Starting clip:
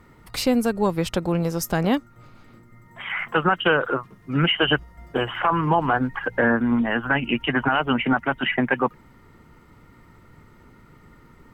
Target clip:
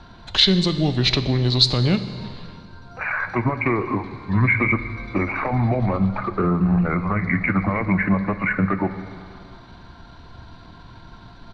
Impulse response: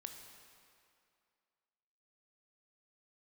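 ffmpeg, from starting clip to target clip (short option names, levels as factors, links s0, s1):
-filter_complex "[0:a]lowshelf=f=380:g=-5,acrossover=split=470|3000[s0][s1][s2];[s1]acompressor=threshold=0.02:ratio=4[s3];[s0][s3][s2]amix=inputs=3:normalize=0,asplit=2[s4][s5];[s5]alimiter=level_in=1.06:limit=0.0631:level=0:latency=1:release=177,volume=0.944,volume=1.26[s6];[s4][s6]amix=inputs=2:normalize=0,lowpass=f=5500:t=q:w=6.9,asetrate=33038,aresample=44100,atempo=1.33484,asplit=2[s7][s8];[1:a]atrim=start_sample=2205,lowshelf=f=130:g=10.5[s9];[s8][s9]afir=irnorm=-1:irlink=0,volume=1.78[s10];[s7][s10]amix=inputs=2:normalize=0,volume=0.562"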